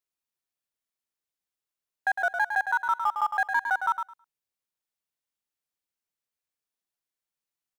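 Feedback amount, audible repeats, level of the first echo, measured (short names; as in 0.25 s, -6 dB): 15%, 2, -7.0 dB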